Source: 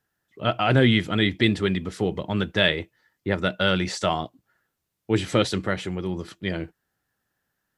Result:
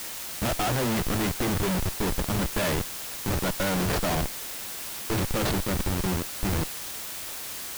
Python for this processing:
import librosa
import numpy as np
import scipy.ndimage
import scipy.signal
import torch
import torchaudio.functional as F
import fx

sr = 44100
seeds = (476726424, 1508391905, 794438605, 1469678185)

y = fx.delta_mod(x, sr, bps=64000, step_db=-34.0)
y = fx.schmitt(y, sr, flips_db=-26.5)
y = fx.quant_dither(y, sr, seeds[0], bits=6, dither='triangular')